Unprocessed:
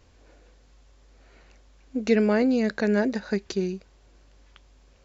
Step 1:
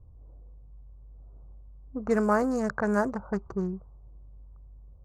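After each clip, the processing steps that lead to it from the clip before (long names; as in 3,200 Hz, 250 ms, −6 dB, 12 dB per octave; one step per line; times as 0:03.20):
adaptive Wiener filter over 25 samples
low-pass that shuts in the quiet parts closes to 430 Hz, open at −17.5 dBFS
drawn EQ curve 140 Hz 0 dB, 230 Hz −14 dB, 380 Hz −13 dB, 590 Hz −9 dB, 1,200 Hz +4 dB, 2,400 Hz −23 dB, 3,600 Hz −28 dB, 5,700 Hz −6 dB, 8,300 Hz +7 dB
level +7.5 dB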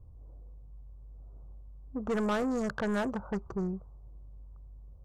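soft clipping −26 dBFS, distortion −9 dB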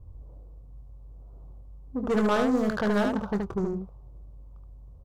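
running median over 15 samples
on a send: ambience of single reflections 24 ms −11 dB, 74 ms −4 dB
on the sum: level +4.5 dB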